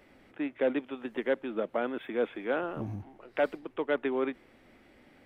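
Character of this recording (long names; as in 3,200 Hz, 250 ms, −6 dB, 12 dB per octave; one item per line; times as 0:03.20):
background noise floor −60 dBFS
spectral slope −2.0 dB per octave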